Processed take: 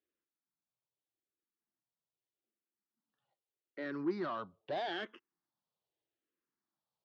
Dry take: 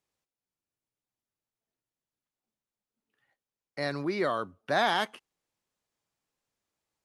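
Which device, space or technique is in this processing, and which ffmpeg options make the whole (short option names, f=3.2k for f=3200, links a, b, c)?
barber-pole phaser into a guitar amplifier: -filter_complex "[0:a]asplit=2[a][b];[b]afreqshift=-0.81[c];[a][c]amix=inputs=2:normalize=1,asoftclip=type=tanh:threshold=-29dB,highpass=78,equalizer=f=90:t=q:w=4:g=-8,equalizer=f=340:t=q:w=4:g=8,equalizer=f=2.3k:t=q:w=4:g=-7,lowpass=f=4.3k:w=0.5412,lowpass=f=4.3k:w=1.3066,volume=-4dB"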